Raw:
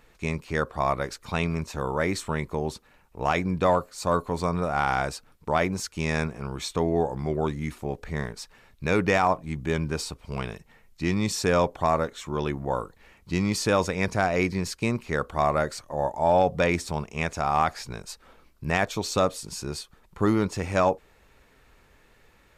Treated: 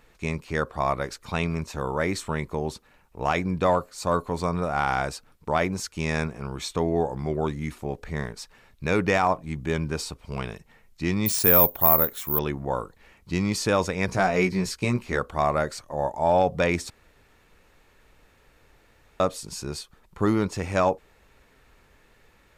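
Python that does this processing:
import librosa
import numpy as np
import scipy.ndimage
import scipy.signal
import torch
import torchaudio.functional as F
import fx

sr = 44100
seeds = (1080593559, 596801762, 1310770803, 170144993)

y = fx.resample_bad(x, sr, factor=3, down='none', up='zero_stuff', at=(11.26, 12.39))
y = fx.doubler(y, sr, ms=16.0, db=-4.0, at=(14.07, 15.19))
y = fx.edit(y, sr, fx.room_tone_fill(start_s=16.9, length_s=2.3), tone=tone)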